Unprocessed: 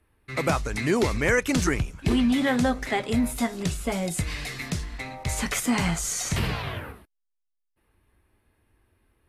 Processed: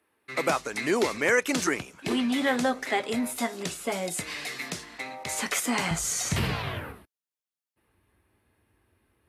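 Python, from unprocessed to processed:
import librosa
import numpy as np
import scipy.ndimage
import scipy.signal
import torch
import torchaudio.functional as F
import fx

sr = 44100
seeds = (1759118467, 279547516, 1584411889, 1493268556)

y = fx.highpass(x, sr, hz=fx.steps((0.0, 300.0), (5.91, 76.0)), slope=12)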